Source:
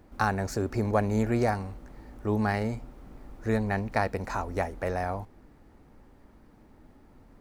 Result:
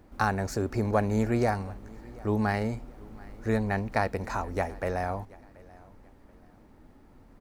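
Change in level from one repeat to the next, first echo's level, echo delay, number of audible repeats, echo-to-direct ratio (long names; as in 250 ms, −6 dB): −10.0 dB, −23.0 dB, 731 ms, 2, −22.5 dB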